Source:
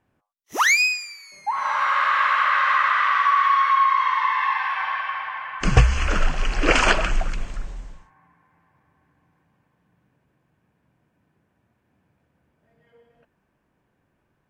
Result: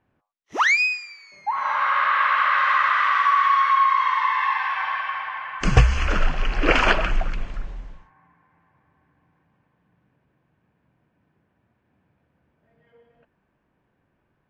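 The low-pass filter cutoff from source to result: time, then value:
0:02.18 3,700 Hz
0:03.19 9,300 Hz
0:05.50 9,300 Hz
0:06.44 3,800 Hz

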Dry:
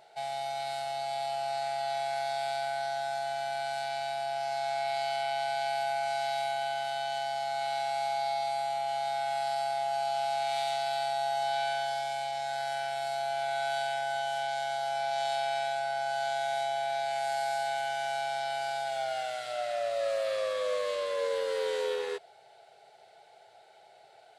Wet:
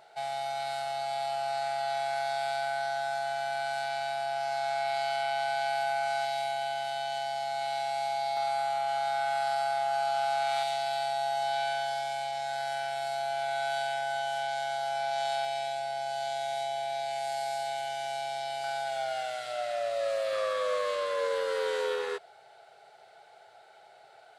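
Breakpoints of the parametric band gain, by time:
parametric band 1,300 Hz 0.71 octaves
+6 dB
from 0:06.25 −1 dB
from 0:08.37 +9.5 dB
from 0:10.63 +1 dB
from 0:15.45 −9.5 dB
from 0:18.64 +1 dB
from 0:20.33 +8 dB

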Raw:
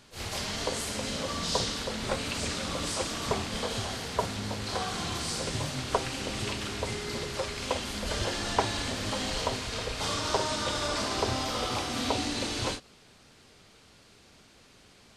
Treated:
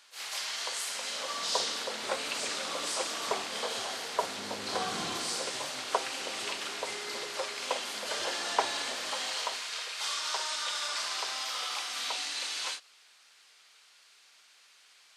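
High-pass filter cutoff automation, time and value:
0:00.76 1,100 Hz
0:01.72 480 Hz
0:04.18 480 Hz
0:04.96 190 Hz
0:05.54 540 Hz
0:08.81 540 Hz
0:09.83 1,300 Hz

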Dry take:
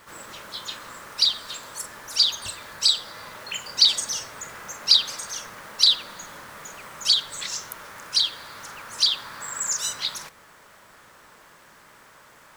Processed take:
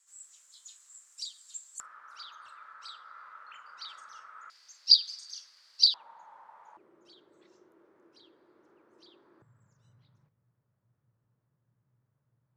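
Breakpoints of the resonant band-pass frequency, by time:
resonant band-pass, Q 8.8
7,400 Hz
from 0:01.80 1,300 Hz
from 0:04.50 4,700 Hz
from 0:05.94 880 Hz
from 0:06.77 350 Hz
from 0:09.42 120 Hz

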